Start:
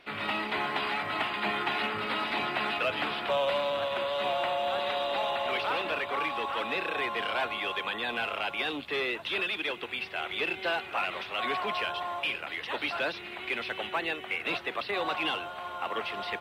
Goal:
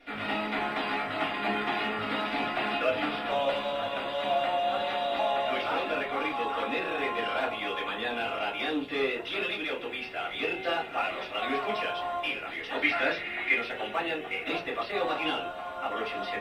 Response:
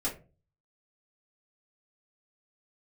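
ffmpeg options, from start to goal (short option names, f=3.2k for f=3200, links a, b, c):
-filter_complex "[0:a]asettb=1/sr,asplit=3[a][b][c];[a]atrim=end=12.824[d];[b]atrim=start=12.82:end=13.54,asetpts=PTS-STARTPTS,afade=t=in:d=0.004:c=qsin,afade=t=out:st=0.716:d=0.004:c=qsin,equalizer=f=2k:w=2.3:g=12.5[e];[c]atrim=start=13.536[f];[d][e]acrossfade=d=0.004:c1=hsin:c2=qsin[g];[g][f]acrossfade=d=0.004:c1=qsin:c2=hsin[h];[1:a]atrim=start_sample=2205[i];[h][i]afir=irnorm=-1:irlink=0,volume=-4.5dB"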